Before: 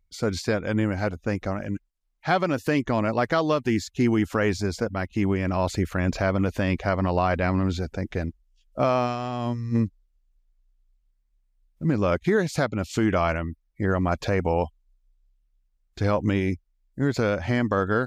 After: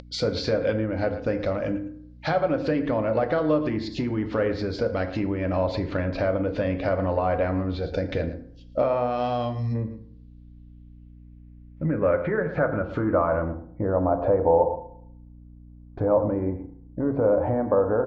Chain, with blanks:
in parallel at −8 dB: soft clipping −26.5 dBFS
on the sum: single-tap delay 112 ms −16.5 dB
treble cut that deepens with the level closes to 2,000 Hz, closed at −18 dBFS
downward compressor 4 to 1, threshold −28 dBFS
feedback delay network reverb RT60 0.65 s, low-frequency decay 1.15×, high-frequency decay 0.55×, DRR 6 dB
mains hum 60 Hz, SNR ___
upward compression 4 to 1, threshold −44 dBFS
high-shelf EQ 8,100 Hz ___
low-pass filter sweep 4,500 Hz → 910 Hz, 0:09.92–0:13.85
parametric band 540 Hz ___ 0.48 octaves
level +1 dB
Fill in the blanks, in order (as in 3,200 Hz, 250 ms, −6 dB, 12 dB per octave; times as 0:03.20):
19 dB, −3 dB, +10.5 dB